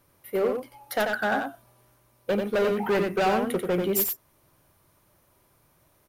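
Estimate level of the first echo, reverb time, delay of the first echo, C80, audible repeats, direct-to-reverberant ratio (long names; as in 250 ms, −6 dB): −5.0 dB, no reverb audible, 90 ms, no reverb audible, 1, no reverb audible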